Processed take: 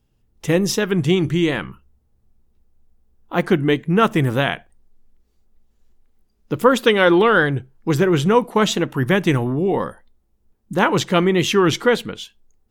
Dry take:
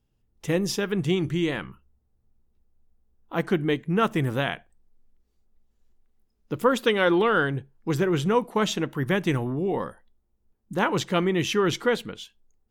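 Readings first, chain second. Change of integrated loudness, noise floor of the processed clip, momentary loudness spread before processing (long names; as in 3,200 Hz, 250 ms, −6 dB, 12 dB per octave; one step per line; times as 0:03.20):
+7.0 dB, −65 dBFS, 12 LU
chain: wow of a warped record 45 rpm, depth 100 cents
level +7 dB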